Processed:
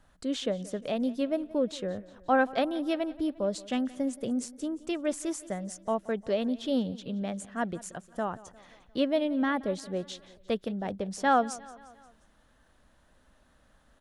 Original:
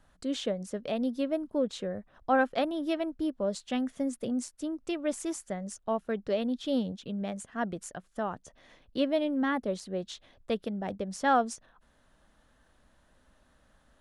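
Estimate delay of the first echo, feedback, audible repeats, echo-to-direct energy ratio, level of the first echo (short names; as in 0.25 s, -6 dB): 0.176 s, 56%, 3, -18.5 dB, -20.0 dB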